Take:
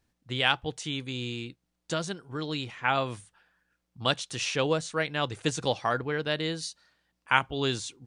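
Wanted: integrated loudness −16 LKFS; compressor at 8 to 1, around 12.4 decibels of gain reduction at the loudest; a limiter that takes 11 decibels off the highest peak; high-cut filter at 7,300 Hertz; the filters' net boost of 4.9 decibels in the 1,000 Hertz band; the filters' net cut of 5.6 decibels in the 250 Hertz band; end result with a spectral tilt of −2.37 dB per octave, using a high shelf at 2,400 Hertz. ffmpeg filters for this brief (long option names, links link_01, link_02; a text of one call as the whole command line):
ffmpeg -i in.wav -af "lowpass=7300,equalizer=frequency=250:width_type=o:gain=-8.5,equalizer=frequency=1000:width_type=o:gain=5.5,highshelf=frequency=2400:gain=7,acompressor=threshold=-25dB:ratio=8,volume=17dB,alimiter=limit=-2.5dB:level=0:latency=1" out.wav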